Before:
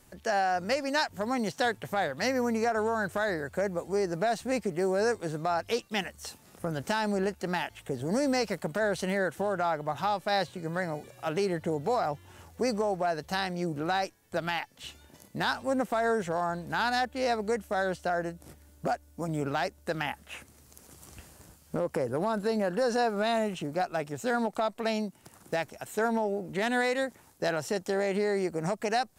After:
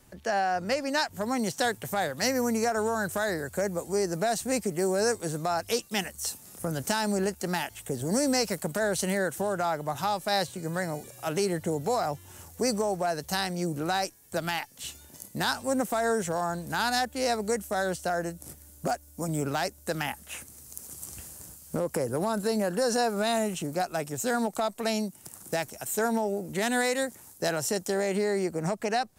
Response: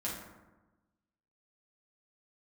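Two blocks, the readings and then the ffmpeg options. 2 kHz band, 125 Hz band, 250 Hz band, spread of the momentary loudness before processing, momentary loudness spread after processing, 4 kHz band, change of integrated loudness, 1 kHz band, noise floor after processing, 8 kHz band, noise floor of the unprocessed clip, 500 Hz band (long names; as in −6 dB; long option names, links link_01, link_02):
0.0 dB, +2.5 dB, +1.5 dB, 8 LU, 8 LU, +3.5 dB, +1.0 dB, +0.5 dB, −53 dBFS, +10.5 dB, −58 dBFS, +0.5 dB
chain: -filter_complex "[0:a]equalizer=frequency=120:width_type=o:width=2.8:gain=2.5,acrossover=split=350|6200[link_01][link_02][link_03];[link_03]dynaudnorm=framelen=290:gausssize=9:maxgain=14dB[link_04];[link_01][link_02][link_04]amix=inputs=3:normalize=0"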